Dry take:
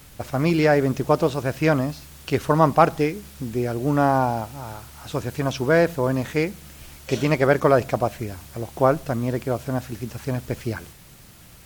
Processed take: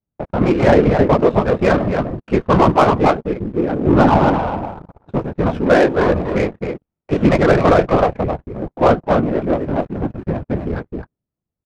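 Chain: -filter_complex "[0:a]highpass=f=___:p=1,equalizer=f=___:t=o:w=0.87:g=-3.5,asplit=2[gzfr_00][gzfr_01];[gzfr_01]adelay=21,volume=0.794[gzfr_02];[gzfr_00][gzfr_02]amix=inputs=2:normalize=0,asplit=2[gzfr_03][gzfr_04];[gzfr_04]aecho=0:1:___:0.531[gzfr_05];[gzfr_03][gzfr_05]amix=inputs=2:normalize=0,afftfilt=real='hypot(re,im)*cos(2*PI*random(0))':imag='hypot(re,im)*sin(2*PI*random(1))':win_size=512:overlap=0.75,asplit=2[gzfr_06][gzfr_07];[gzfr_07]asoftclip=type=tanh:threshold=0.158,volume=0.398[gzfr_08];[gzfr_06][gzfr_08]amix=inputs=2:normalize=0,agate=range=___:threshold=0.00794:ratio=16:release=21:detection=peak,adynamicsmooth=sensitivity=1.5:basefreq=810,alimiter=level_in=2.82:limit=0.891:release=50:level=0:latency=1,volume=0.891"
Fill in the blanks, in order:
62, 5500, 263, 0.01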